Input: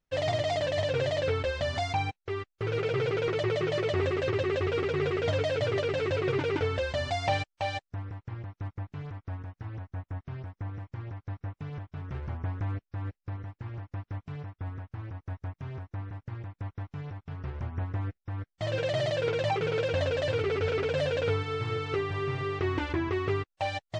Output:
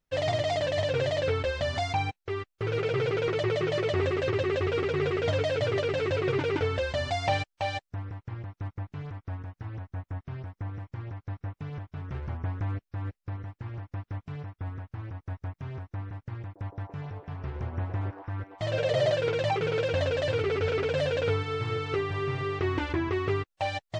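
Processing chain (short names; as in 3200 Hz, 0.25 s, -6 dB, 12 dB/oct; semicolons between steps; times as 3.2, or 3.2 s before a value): 16.44–19.15 delay with a stepping band-pass 0.115 s, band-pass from 470 Hz, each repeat 0.7 oct, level 0 dB; gain +1 dB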